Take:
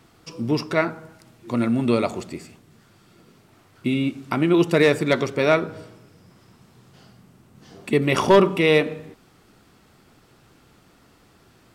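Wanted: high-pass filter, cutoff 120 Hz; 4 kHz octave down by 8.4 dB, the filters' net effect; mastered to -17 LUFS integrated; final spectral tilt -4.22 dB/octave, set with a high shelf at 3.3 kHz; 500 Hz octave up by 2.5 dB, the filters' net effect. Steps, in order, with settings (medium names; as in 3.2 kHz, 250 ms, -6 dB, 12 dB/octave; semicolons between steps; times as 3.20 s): high-pass 120 Hz; peaking EQ 500 Hz +3.5 dB; treble shelf 3.3 kHz -9 dB; peaking EQ 4 kHz -5 dB; trim +2.5 dB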